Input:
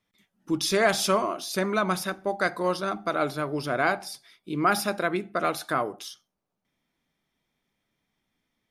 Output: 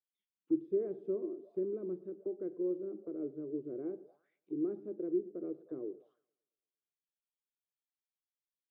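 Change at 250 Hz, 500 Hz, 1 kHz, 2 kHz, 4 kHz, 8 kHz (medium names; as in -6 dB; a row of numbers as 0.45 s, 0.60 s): -6.5 dB, -9.5 dB, under -35 dB, under -40 dB, under -40 dB, under -40 dB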